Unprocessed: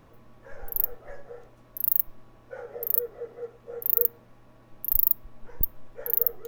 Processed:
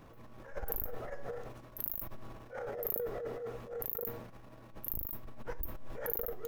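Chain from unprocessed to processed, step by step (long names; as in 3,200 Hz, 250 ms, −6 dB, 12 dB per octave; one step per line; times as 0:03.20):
compressor whose output falls as the input rises −30 dBFS, ratio −1
transient designer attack −10 dB, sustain +9 dB
level −4.5 dB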